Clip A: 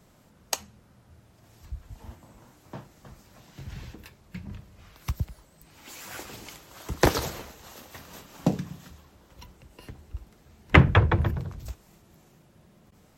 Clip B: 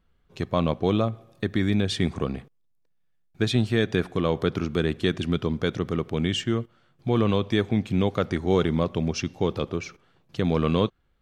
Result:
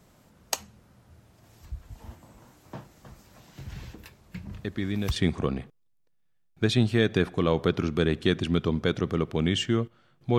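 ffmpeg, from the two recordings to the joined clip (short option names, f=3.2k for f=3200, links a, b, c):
-filter_complex "[1:a]asplit=2[a][b];[0:a]apad=whole_dur=10.38,atrim=end=10.38,atrim=end=5.162[c];[b]atrim=start=1.938:end=7.16[d];[a]atrim=start=1.3:end=1.94,asetpts=PTS-STARTPTS,volume=-6.5dB,afade=t=in:d=0.004:c=hsin,afade=t=out:st=0.636:d=0.004:c=hsin,adelay=4520[e];[c][d]acrossfade=d=0.004:c1=hsin:c2=hsin[f];[f][e]amix=inputs=2:normalize=0"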